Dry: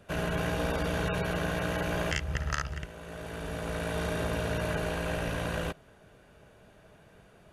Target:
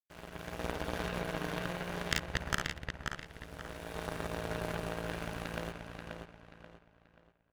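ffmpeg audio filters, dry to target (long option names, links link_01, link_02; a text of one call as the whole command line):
ffmpeg -i in.wav -filter_complex "[0:a]aeval=exprs='0.178*(cos(1*acos(clip(val(0)/0.178,-1,1)))-cos(1*PI/2))+0.0398*(cos(2*acos(clip(val(0)/0.178,-1,1)))-cos(2*PI/2))+0.0562*(cos(3*acos(clip(val(0)/0.178,-1,1)))-cos(3*PI/2))+0.01*(cos(4*acos(clip(val(0)/0.178,-1,1)))-cos(4*PI/2))':channel_layout=same,dynaudnorm=framelen=150:gausssize=7:maxgain=11dB,acrusher=bits=7:mix=0:aa=0.5,asplit=2[link_01][link_02];[link_02]adelay=533,lowpass=frequency=4800:poles=1,volume=-4.5dB,asplit=2[link_03][link_04];[link_04]adelay=533,lowpass=frequency=4800:poles=1,volume=0.35,asplit=2[link_05][link_06];[link_06]adelay=533,lowpass=frequency=4800:poles=1,volume=0.35,asplit=2[link_07][link_08];[link_08]adelay=533,lowpass=frequency=4800:poles=1,volume=0.35[link_09];[link_03][link_05][link_07][link_09]amix=inputs=4:normalize=0[link_10];[link_01][link_10]amix=inputs=2:normalize=0,volume=-4.5dB" out.wav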